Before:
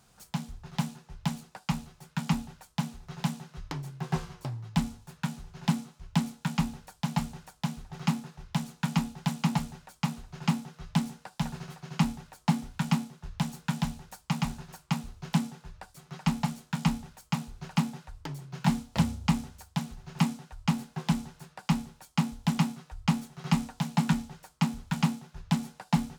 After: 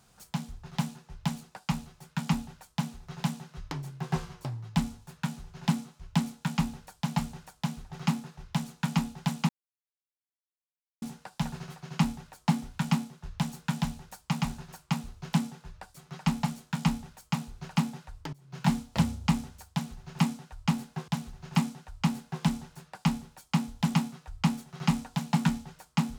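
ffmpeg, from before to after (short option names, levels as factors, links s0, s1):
-filter_complex "[0:a]asplit=5[s0][s1][s2][s3][s4];[s0]atrim=end=9.49,asetpts=PTS-STARTPTS,afade=t=out:st=9.486:d=0.004:c=hsin[s5];[s1]atrim=start=9.49:end=11.02,asetpts=PTS-STARTPTS,volume=0[s6];[s2]atrim=start=11.02:end=18.33,asetpts=PTS-STARTPTS,afade=t=in:d=0.004:c=hsin,afade=t=out:st=7.306:d=0.004:c=hsin:silence=0.11885[s7];[s3]atrim=start=18.33:end=21.082,asetpts=PTS-STARTPTS,afade=t=in:d=0.25:c=qua:silence=0.11885[s8];[s4]atrim=start=19.718[s9];[s5][s6][s7][s8]concat=n=4:v=0:a=1[s10];[s10][s9]acrossfade=d=0.004:c1=hsin:c2=hsin"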